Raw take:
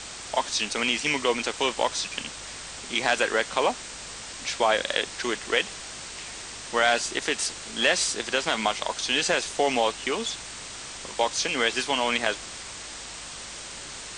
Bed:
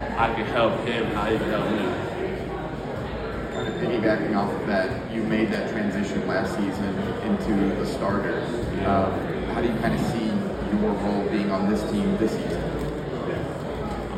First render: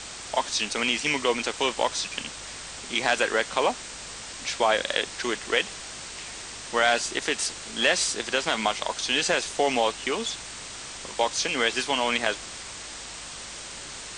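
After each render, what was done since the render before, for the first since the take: nothing audible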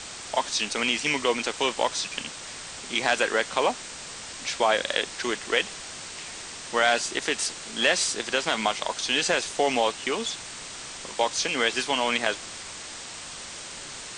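de-hum 50 Hz, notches 2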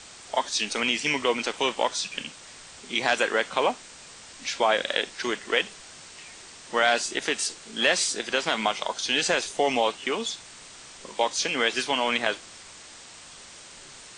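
noise print and reduce 7 dB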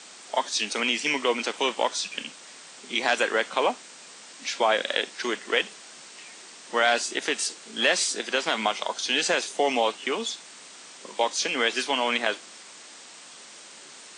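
HPF 190 Hz 24 dB/oct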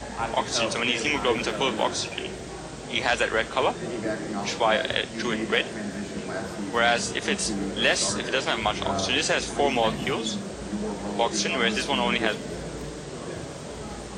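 add bed -7.5 dB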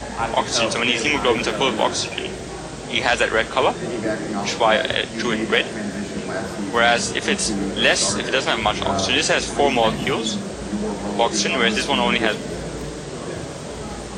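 gain +5.5 dB; limiter -2 dBFS, peak gain reduction 2 dB

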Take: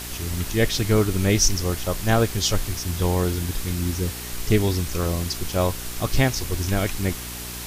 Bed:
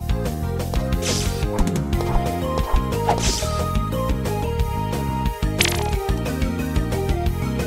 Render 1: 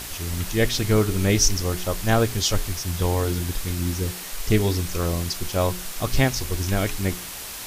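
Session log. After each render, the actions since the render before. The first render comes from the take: de-hum 60 Hz, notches 7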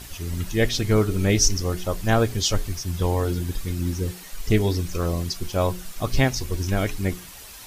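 denoiser 9 dB, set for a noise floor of -35 dBFS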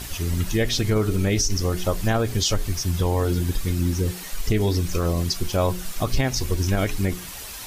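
in parallel at -0.5 dB: compressor, threshold -27 dBFS, peak gain reduction 13.5 dB; on the sum: limiter -12 dBFS, peak gain reduction 8 dB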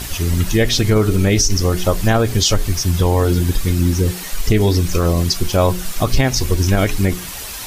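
gain +7 dB

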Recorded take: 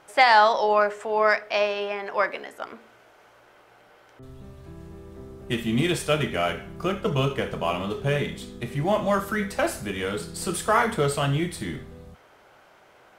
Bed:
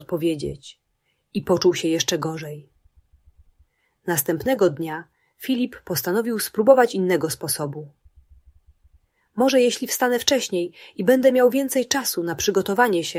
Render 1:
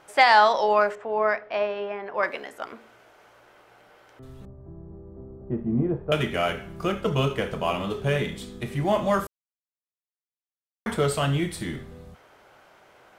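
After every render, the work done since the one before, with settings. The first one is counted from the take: 0.95–2.23 tape spacing loss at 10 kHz 30 dB; 4.45–6.12 Bessel low-pass 670 Hz, order 4; 9.27–10.86 mute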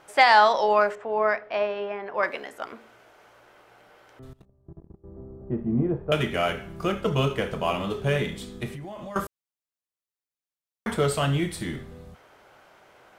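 4.33–5.04 level quantiser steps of 21 dB; 8.68–9.16 compressor 16:1, threshold -34 dBFS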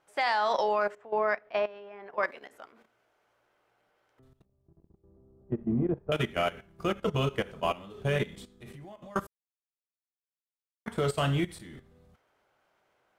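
level quantiser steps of 13 dB; upward expander 1.5:1, over -40 dBFS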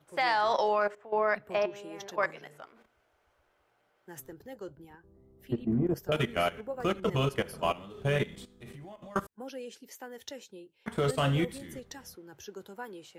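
add bed -24.5 dB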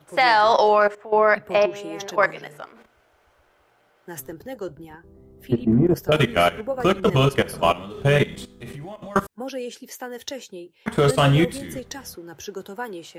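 gain +10.5 dB

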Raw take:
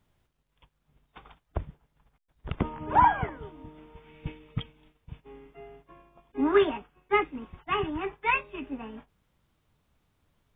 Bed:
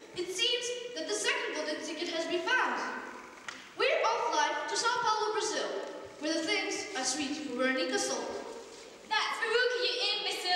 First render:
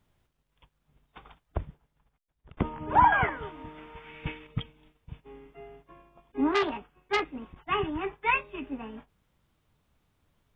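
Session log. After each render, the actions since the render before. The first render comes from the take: 1.6–2.57 fade out, to -23 dB; 3.12–4.47 bell 1800 Hz +11.5 dB 2.6 oct; 6.51–7.58 core saturation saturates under 2100 Hz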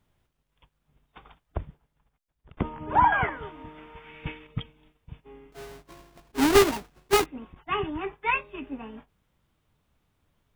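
5.52–7.26 half-waves squared off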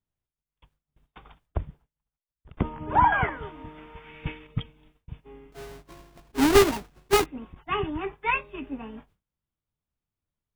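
gate with hold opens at -55 dBFS; low shelf 200 Hz +4 dB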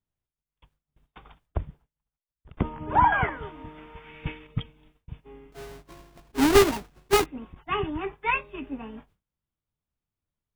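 nothing audible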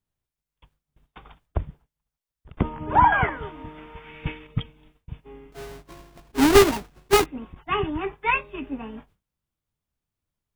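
gain +3 dB

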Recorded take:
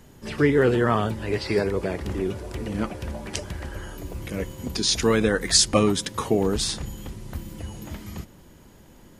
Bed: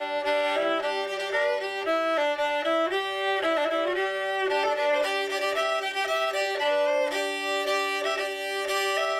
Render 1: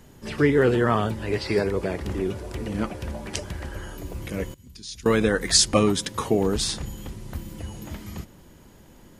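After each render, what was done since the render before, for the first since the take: 4.54–5.06 passive tone stack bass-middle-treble 6-0-2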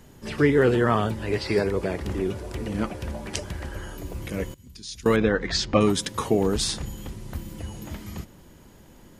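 5.16–5.81 Gaussian blur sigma 1.9 samples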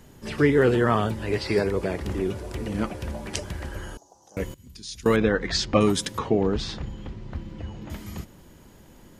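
3.97–4.37 double band-pass 2200 Hz, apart 2.9 oct; 6.18–7.9 air absorption 190 m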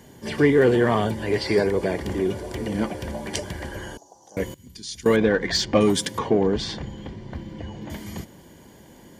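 in parallel at -3 dB: soft clip -21 dBFS, distortion -8 dB; on the sum: notch comb 1300 Hz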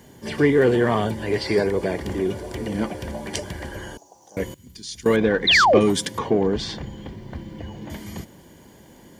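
5.47–5.79 painted sound fall 330–4200 Hz -15 dBFS; bit-crush 11-bit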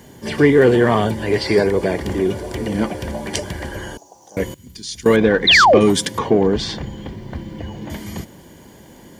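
gain +5 dB; limiter -2 dBFS, peak gain reduction 2.5 dB

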